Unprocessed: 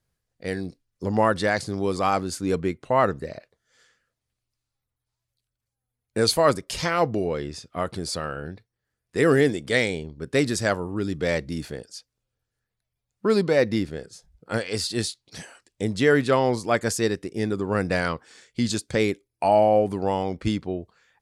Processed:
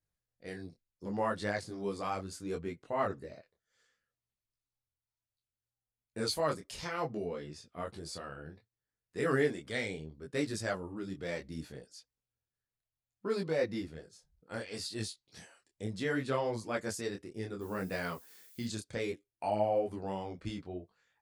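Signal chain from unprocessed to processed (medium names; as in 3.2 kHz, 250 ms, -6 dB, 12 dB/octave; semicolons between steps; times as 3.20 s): 9.26–9.70 s: peaking EQ 1.4 kHz +6 dB 1.5 oct; 17.60–18.65 s: added noise violet -45 dBFS; detune thickener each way 23 cents; trim -9 dB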